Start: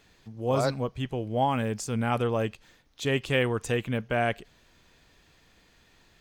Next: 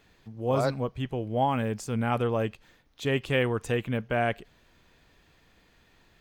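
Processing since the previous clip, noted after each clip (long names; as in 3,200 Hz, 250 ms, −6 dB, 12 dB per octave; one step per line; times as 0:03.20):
parametric band 6,600 Hz −5.5 dB 1.7 octaves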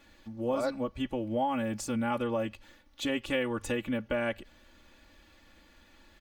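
mains-hum notches 50/100 Hz
comb filter 3.5 ms, depth 91%
downward compressor 2.5 to 1, threshold −30 dBFS, peak gain reduction 8.5 dB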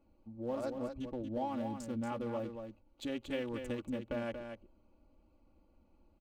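adaptive Wiener filter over 25 samples
parametric band 2,000 Hz −4.5 dB 1.5 octaves
single-tap delay 233 ms −7 dB
level −6.5 dB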